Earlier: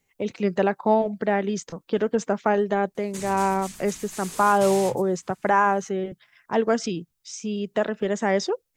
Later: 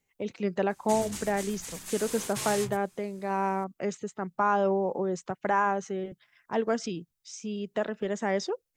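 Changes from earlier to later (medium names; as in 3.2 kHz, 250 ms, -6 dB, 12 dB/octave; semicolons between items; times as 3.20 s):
speech -6.0 dB; background: entry -2.25 s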